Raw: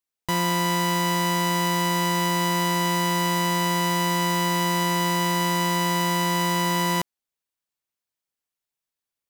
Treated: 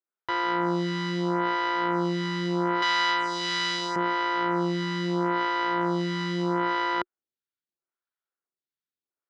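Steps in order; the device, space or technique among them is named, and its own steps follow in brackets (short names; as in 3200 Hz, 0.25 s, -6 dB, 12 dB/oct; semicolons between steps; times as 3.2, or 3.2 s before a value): 2.82–3.96 weighting filter ITU-R 468; vibe pedal into a guitar amplifier (photocell phaser 0.77 Hz; tube stage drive 14 dB, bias 0.75; speaker cabinet 93–4200 Hz, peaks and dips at 360 Hz +8 dB, 1400 Hz +10 dB, 2600 Hz -7 dB); gain +1.5 dB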